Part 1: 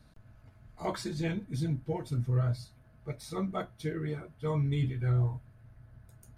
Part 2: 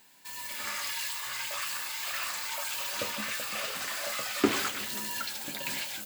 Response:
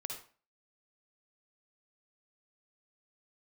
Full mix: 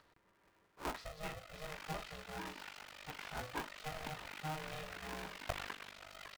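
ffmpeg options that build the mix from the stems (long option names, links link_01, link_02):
-filter_complex "[0:a]acompressor=mode=upward:threshold=-47dB:ratio=2.5,volume=-6dB[link_01];[1:a]tremolo=f=49:d=1,adelay=1050,volume=-8.5dB[link_02];[link_01][link_02]amix=inputs=2:normalize=0,highpass=370,lowpass=3100,aeval=exprs='val(0)*sgn(sin(2*PI*310*n/s))':channel_layout=same"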